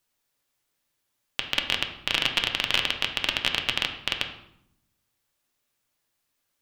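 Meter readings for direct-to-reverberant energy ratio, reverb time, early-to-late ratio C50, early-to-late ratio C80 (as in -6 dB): 3.0 dB, 0.75 s, 8.0 dB, 11.0 dB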